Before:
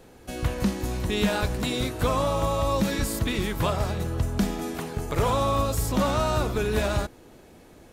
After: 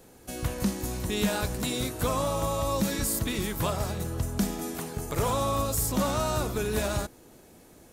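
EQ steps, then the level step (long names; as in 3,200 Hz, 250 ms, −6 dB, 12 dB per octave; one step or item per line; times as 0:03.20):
bass and treble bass +5 dB, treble +9 dB
low-shelf EQ 150 Hz −8.5 dB
parametric band 4,200 Hz −3.5 dB 1.9 octaves
−3.0 dB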